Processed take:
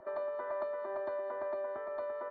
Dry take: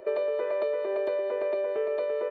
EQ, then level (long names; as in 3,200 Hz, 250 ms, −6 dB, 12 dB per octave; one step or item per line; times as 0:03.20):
low-pass filter 2,600 Hz 12 dB per octave
phaser with its sweep stopped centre 1,100 Hz, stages 4
0.0 dB